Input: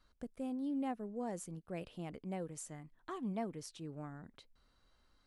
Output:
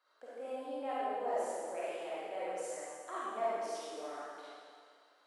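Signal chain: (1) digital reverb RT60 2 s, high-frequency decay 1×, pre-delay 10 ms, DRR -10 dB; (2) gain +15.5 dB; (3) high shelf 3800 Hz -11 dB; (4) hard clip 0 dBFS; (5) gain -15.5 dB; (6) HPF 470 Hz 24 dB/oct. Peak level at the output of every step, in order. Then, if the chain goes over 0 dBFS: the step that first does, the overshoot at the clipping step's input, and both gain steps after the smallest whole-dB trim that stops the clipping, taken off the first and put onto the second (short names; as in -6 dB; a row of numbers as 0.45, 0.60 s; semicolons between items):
-19.5, -4.0, -4.0, -4.0, -19.5, -24.0 dBFS; no overload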